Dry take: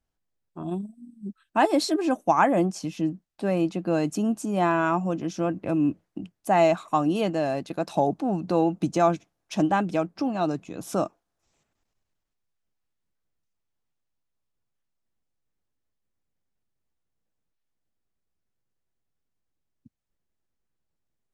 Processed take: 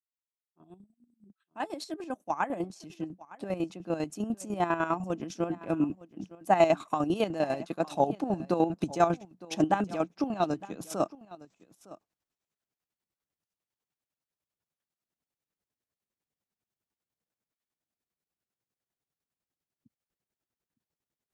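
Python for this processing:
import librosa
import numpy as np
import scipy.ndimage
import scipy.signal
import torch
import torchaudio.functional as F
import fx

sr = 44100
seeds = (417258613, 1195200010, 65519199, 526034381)

p1 = fx.fade_in_head(x, sr, length_s=6.3)
p2 = fx.highpass(p1, sr, hz=150.0, slope=6)
p3 = fx.chopper(p2, sr, hz=10.0, depth_pct=65, duty_pct=40)
y = p3 + fx.echo_single(p3, sr, ms=910, db=-19.0, dry=0)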